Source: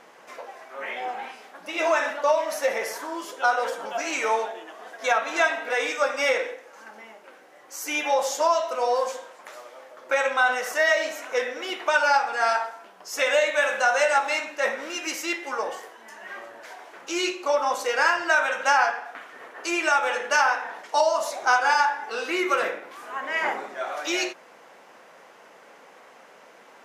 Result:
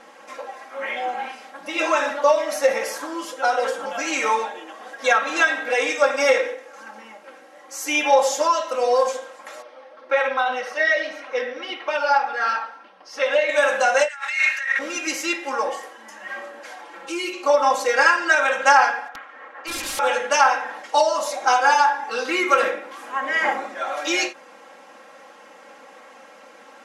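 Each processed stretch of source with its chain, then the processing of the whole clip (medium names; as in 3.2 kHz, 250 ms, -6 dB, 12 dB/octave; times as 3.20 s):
9.62–13.49 s: Savitzky-Golay filter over 15 samples + flange 1.8 Hz, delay 1.4 ms, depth 4.5 ms, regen -49%
14.08–14.79 s: compressor with a negative ratio -34 dBFS + resonant high-pass 1.8 kHz, resonance Q 2.8
16.81–17.33 s: comb 5.9 ms, depth 66% + compression 1.5:1, threshold -39 dBFS + decimation joined by straight lines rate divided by 3×
19.08–19.99 s: low-pass 1.4 kHz + tilt EQ +4.5 dB/octave + integer overflow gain 27 dB
whole clip: low-pass 12 kHz 24 dB/octave; comb 3.7 ms, depth 95%; endings held to a fixed fall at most 240 dB/s; trim +1.5 dB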